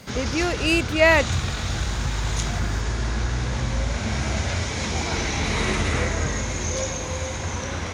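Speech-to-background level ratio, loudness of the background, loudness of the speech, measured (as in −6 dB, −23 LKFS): 5.5 dB, −26.0 LKFS, −20.5 LKFS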